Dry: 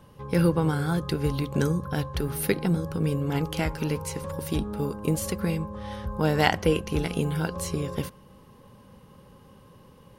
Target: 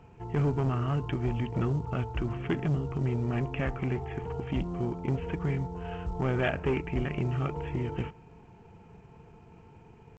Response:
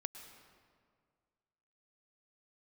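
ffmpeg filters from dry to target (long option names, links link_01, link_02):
-af "aresample=8000,asoftclip=type=tanh:threshold=-21dB,aresample=44100,tremolo=f=240:d=0.182,asetrate=37084,aresample=44100,atempo=1.18921" -ar 16000 -c:a pcm_mulaw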